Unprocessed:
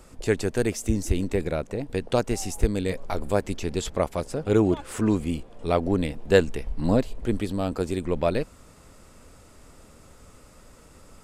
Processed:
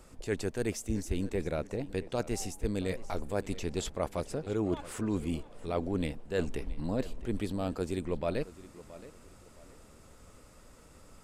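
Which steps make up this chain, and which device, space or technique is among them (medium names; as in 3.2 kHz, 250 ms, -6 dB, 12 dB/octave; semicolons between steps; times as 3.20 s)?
compression on the reversed sound (reverse; compression 12:1, threshold -22 dBFS, peak gain reduction 11.5 dB; reverse); tape echo 670 ms, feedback 34%, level -16 dB, low-pass 5.2 kHz; trim -5 dB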